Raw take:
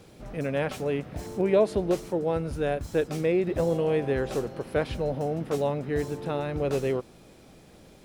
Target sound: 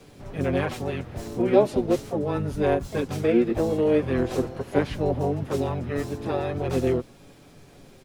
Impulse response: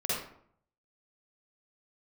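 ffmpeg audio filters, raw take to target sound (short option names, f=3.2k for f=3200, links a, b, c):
-filter_complex "[0:a]flanger=delay=6.8:depth=1.7:regen=19:speed=0.4:shape=sinusoidal,afreqshift=-13,asplit=3[a][b][c];[b]asetrate=29433,aresample=44100,atempo=1.49831,volume=-4dB[d];[c]asetrate=58866,aresample=44100,atempo=0.749154,volume=-10dB[e];[a][d][e]amix=inputs=3:normalize=0,volume=4dB"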